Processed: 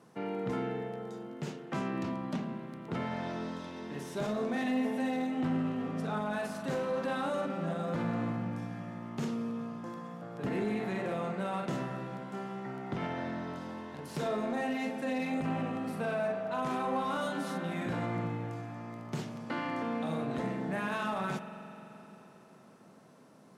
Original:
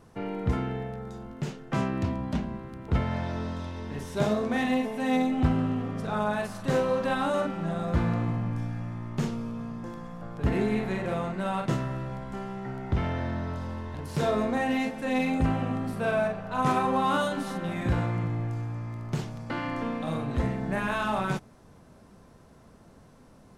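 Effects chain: high-pass 150 Hz 24 dB/octave; Chebyshev shaper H 5 -21 dB, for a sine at -12 dBFS; peak limiter -20.5 dBFS, peak gain reduction 7.5 dB; spring tank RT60 3.7 s, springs 43 ms, chirp 60 ms, DRR 9 dB; trim -6 dB

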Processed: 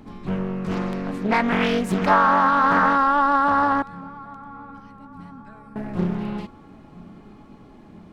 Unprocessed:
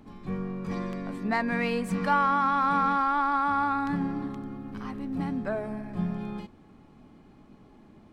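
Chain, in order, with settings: 3.82–5.76 s: amplifier tone stack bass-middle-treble 6-0-2; filtered feedback delay 977 ms, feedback 55%, low-pass 1.5 kHz, level -21 dB; loudspeaker Doppler distortion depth 0.71 ms; trim +7 dB

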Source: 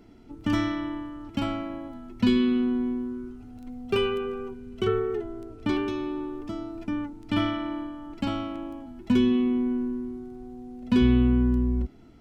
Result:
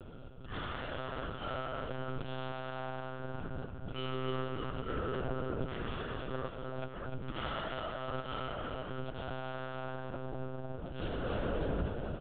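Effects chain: dynamic bell 490 Hz, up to -8 dB, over -42 dBFS, Q 1.9; slow attack 354 ms; hard clipper -39 dBFS, distortion -1 dB; distance through air 150 m; static phaser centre 1.4 kHz, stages 8; feedback delay 297 ms, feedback 49%, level -5.5 dB; monotone LPC vocoder at 8 kHz 130 Hz; trim +8.5 dB

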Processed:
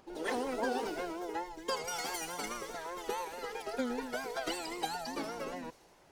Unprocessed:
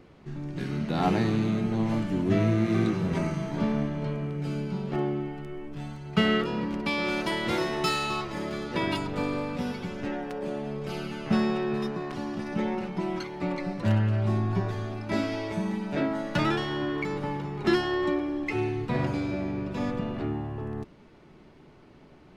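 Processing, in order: plain phase-vocoder stretch 0.64×; wow and flutter 99 cents; feedback echo behind a high-pass 190 ms, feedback 73%, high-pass 2.8 kHz, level -5 dB; speed mistake 33 rpm record played at 78 rpm; trim -6 dB

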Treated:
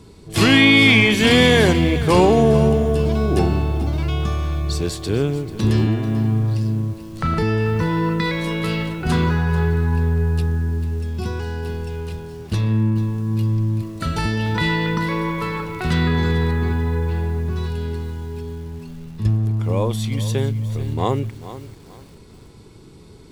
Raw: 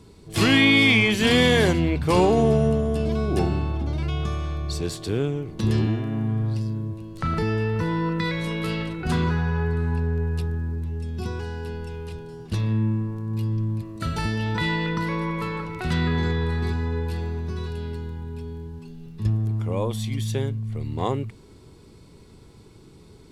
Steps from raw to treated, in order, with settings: 16.51–17.56 s: low-pass 2.6 kHz 12 dB/octave; bit-crushed delay 440 ms, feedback 35%, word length 7-bit, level -14 dB; trim +4.5 dB

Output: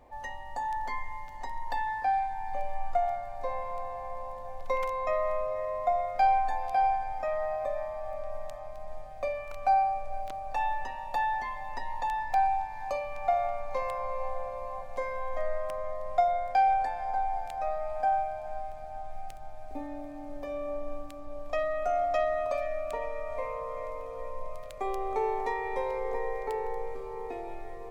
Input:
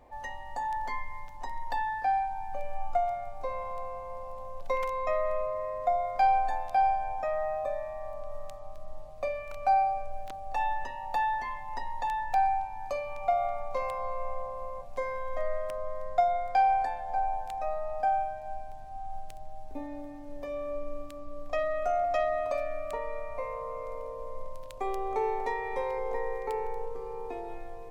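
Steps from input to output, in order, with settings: echo that smears into a reverb 469 ms, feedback 77%, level -16 dB

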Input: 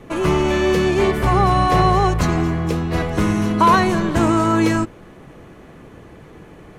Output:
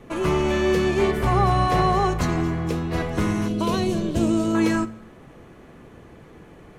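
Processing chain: 3.48–4.55 s: high-order bell 1.3 kHz -12.5 dB; reverberation RT60 0.70 s, pre-delay 4 ms, DRR 14 dB; trim -4.5 dB

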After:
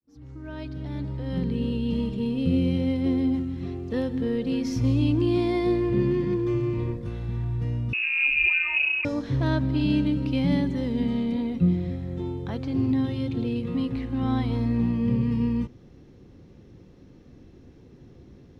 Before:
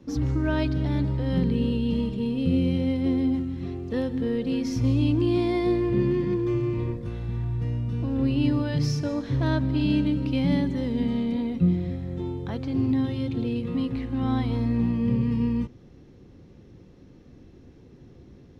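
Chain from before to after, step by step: fade-in on the opening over 2.19 s; 7.93–9.05 s: frequency inversion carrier 2.7 kHz

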